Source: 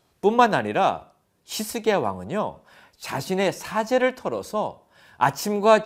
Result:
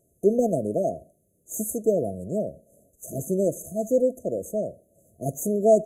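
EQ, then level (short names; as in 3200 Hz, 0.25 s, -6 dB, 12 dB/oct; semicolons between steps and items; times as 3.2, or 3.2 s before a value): brick-wall FIR band-stop 700–6100 Hz; bell 11000 Hz +9 dB 0.29 oct; 0.0 dB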